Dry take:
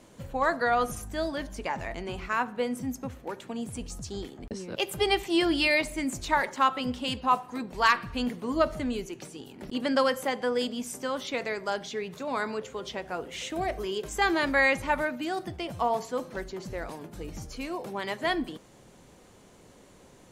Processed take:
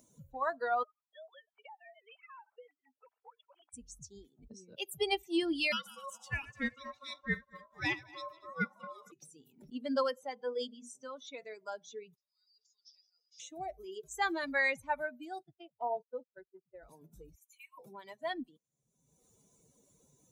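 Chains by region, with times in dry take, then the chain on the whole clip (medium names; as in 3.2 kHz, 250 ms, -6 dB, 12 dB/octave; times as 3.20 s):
0.83–3.74 s: formants replaced by sine waves + high-pass 610 Hz 24 dB/octave + compression 4:1, threshold -37 dBFS
5.72–9.12 s: backward echo that repeats 116 ms, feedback 69%, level -9 dB + ring modulator 820 Hz
10.16–11.38 s: low-pass 7.4 kHz + hum notches 60/120/180/240/300/360/420/480 Hz
12.15–13.40 s: band-pass filter 5 kHz, Q 12 + decay stretcher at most 61 dB/s
15.43–16.83 s: low-pass 3.5 kHz + gate -36 dBFS, range -19 dB + comb of notches 1.1 kHz
17.35–17.78 s: steep high-pass 1 kHz 48 dB/octave + static phaser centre 1.4 kHz, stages 6
whole clip: expander on every frequency bin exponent 2; high-pass 100 Hz 6 dB/octave; upward compressor, threshold -42 dBFS; trim -4 dB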